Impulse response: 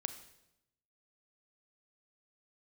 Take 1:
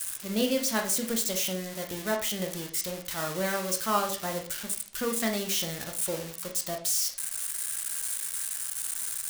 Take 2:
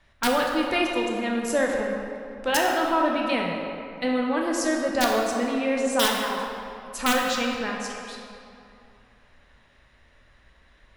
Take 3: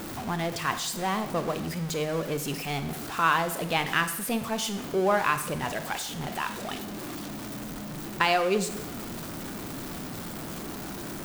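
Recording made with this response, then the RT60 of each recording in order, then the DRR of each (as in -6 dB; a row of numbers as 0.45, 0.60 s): 3; 0.45, 2.6, 0.85 s; 2.5, -1.0, 9.5 dB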